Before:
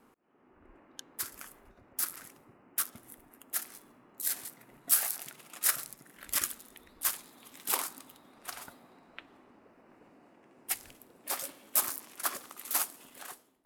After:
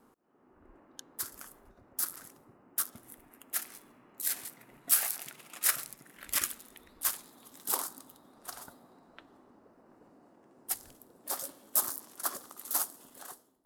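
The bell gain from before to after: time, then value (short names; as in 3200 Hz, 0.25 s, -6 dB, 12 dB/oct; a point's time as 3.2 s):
bell 2400 Hz 0.88 oct
2.84 s -7.5 dB
3.24 s +2 dB
6.46 s +2 dB
7.26 s -5 dB
7.54 s -12 dB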